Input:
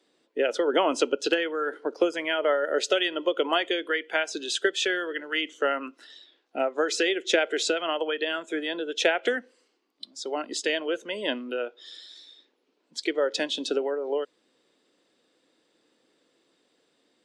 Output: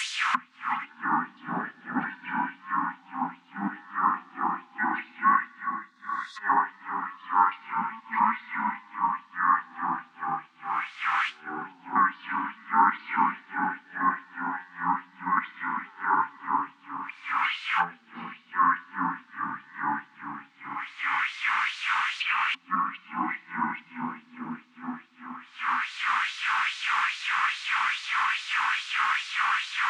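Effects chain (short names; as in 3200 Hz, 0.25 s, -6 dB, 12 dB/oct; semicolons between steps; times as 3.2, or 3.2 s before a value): local time reversal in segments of 0.197 s; added noise white -40 dBFS; ten-band EQ 125 Hz +12 dB, 250 Hz +5 dB, 500 Hz +5 dB, 1000 Hz -10 dB, 2000 Hz +8 dB, 4000 Hz +4 dB, 8000 Hz -9 dB; spectral delete 3.09–3.67, 200–5700 Hz; band shelf 810 Hz -12 dB 1.3 oct; shoebox room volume 2100 m³, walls mixed, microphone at 3.5 m; treble ducked by the level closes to 830 Hz, closed at -22 dBFS; speed mistake 78 rpm record played at 45 rpm; LFO high-pass sine 2.4 Hz 950–4300 Hz; gain +8.5 dB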